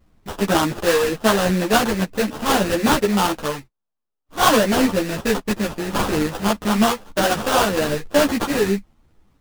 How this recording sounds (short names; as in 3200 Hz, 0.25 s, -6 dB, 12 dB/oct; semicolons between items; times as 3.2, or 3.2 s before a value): aliases and images of a low sample rate 2200 Hz, jitter 20%; a shimmering, thickened sound